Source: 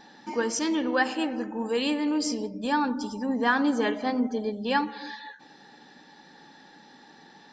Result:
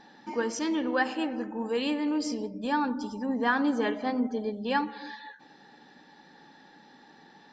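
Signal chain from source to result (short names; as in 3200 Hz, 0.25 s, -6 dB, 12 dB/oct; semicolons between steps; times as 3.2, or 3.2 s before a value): high shelf 6200 Hz -10 dB; gain -2 dB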